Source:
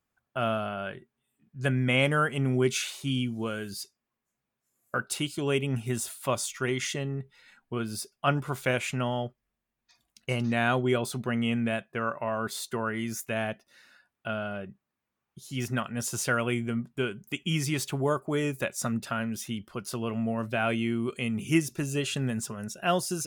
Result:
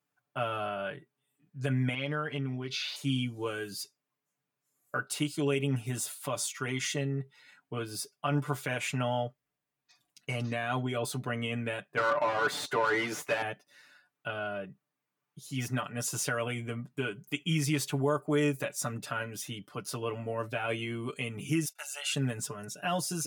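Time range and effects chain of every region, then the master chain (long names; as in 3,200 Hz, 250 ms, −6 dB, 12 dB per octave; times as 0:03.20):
0:01.94–0:02.96: high shelf with overshoot 6,100 Hz −10 dB, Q 3 + downward compressor 5 to 1, threshold −30 dBFS
0:11.97–0:13.42: low-shelf EQ 190 Hz −7 dB + mid-hump overdrive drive 26 dB, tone 1,200 Hz, clips at −16 dBFS
0:21.65–0:22.13: noise gate −47 dBFS, range −20 dB + Butterworth high-pass 700 Hz + comb filter 1.4 ms, depth 68%
whole clip: brickwall limiter −20 dBFS; high-pass filter 120 Hz; comb filter 6.8 ms, depth 92%; level −3.5 dB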